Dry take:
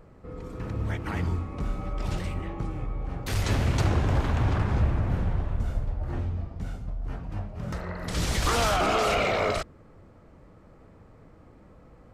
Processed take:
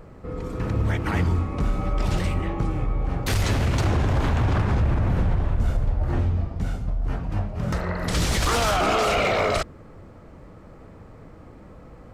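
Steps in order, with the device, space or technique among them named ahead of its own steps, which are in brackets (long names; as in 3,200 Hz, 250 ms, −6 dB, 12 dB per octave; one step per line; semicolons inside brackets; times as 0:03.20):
limiter into clipper (brickwall limiter −21 dBFS, peak gain reduction 7 dB; hard clipping −22.5 dBFS, distortion −29 dB)
level +7.5 dB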